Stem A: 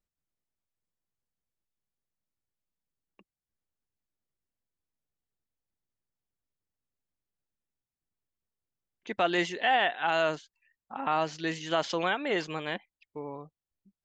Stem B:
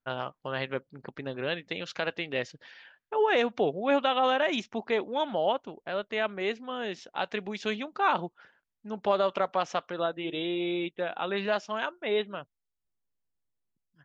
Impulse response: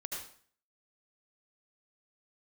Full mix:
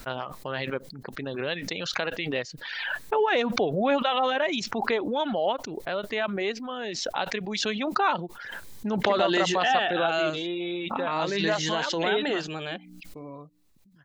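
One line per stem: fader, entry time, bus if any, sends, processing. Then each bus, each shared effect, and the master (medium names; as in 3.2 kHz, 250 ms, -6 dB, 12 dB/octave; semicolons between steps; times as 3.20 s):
+1.5 dB, 0.00 s, no send, hum notches 60/120/180/240/300 Hz; Shepard-style phaser falling 0.37 Hz
+1.0 dB, 0.00 s, no send, reverb removal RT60 0.68 s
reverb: none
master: peaking EQ 4 kHz +4.5 dB 0.24 oct; swell ahead of each attack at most 29 dB/s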